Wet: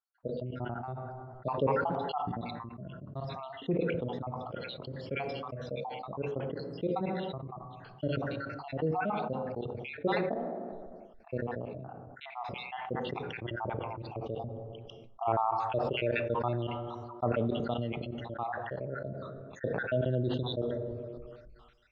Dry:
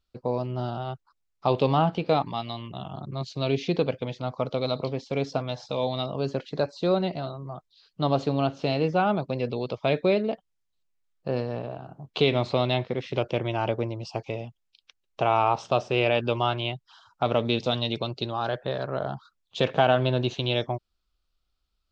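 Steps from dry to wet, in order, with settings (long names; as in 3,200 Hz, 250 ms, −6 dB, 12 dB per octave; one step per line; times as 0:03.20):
time-frequency cells dropped at random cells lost 69%
low-pass filter 1,500 Hz 12 dB per octave
dense smooth reverb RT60 1.1 s, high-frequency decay 0.55×, pre-delay 0 ms, DRR 15 dB
level that may fall only so fast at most 23 dB per second
level −6 dB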